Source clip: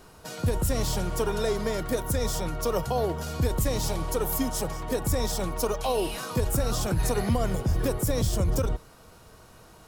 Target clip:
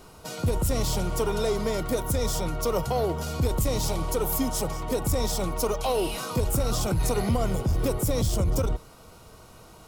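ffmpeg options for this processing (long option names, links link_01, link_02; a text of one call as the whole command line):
ffmpeg -i in.wav -af "aeval=exprs='0.188*(cos(1*acos(clip(val(0)/0.188,-1,1)))-cos(1*PI/2))+0.0119*(cos(5*acos(clip(val(0)/0.188,-1,1)))-cos(5*PI/2))':channel_layout=same,bandreject=frequency=1700:width=5.1" out.wav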